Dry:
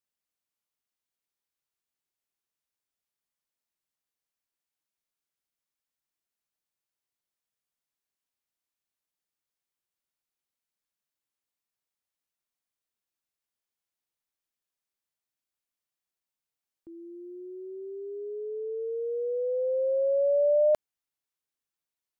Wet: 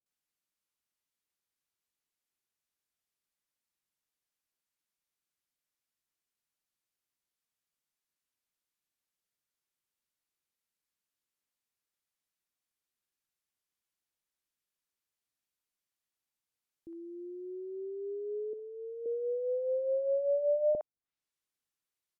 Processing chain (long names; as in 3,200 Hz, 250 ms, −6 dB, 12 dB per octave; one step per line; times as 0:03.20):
treble cut that deepens with the level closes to 540 Hz, closed at −28.5 dBFS
0:18.53–0:19.06: formant filter e
multiband delay without the direct sound lows, highs 60 ms, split 710 Hz